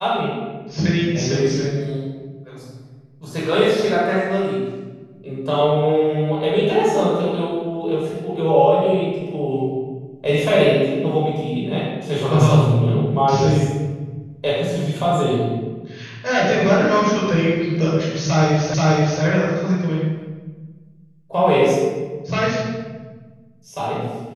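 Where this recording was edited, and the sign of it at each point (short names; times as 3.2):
18.74 repeat of the last 0.48 s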